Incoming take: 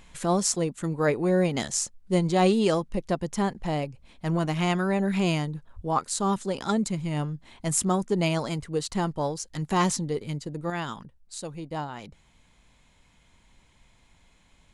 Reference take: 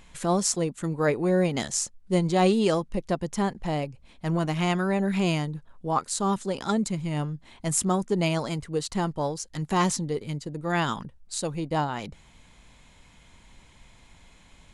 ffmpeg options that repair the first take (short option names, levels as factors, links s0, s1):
-filter_complex "[0:a]asplit=3[s0][s1][s2];[s0]afade=t=out:st=5.75:d=0.02[s3];[s1]highpass=f=140:w=0.5412,highpass=f=140:w=1.3066,afade=t=in:st=5.75:d=0.02,afade=t=out:st=5.87:d=0.02[s4];[s2]afade=t=in:st=5.87:d=0.02[s5];[s3][s4][s5]amix=inputs=3:normalize=0,asetnsamples=n=441:p=0,asendcmd='10.7 volume volume 6.5dB',volume=1"